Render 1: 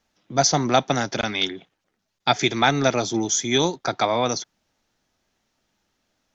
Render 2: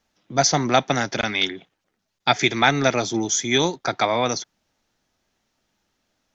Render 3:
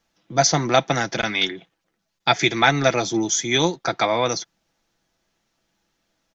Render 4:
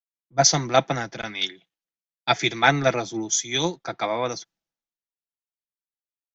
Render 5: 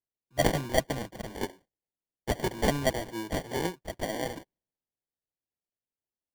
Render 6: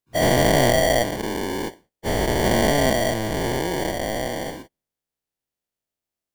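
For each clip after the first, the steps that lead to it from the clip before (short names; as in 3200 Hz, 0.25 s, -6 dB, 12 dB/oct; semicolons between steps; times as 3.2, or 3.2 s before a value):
dynamic EQ 2000 Hz, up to +5 dB, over -37 dBFS, Q 1.8
comb 6 ms, depth 37%
three-band expander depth 100%; gain -4.5 dB
sample-and-hold 34×; gain -7 dB
spectral dilation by 0.48 s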